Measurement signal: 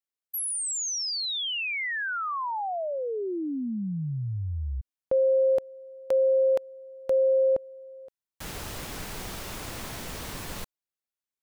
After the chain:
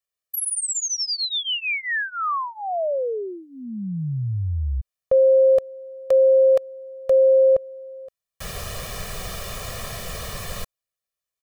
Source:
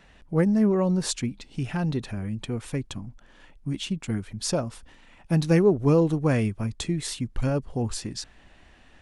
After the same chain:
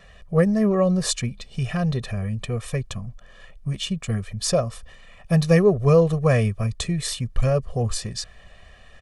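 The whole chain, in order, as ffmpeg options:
-af "aecho=1:1:1.7:0.91,volume=2dB"

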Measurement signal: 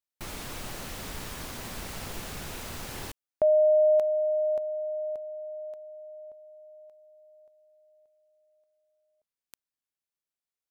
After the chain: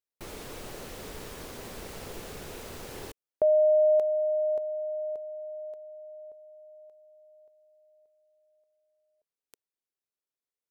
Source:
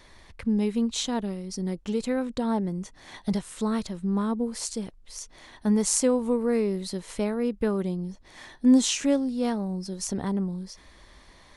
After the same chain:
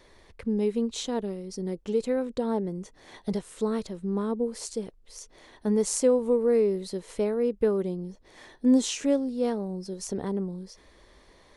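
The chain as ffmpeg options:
-af "equalizer=f=440:w=1.6:g=9.5,volume=-5dB"

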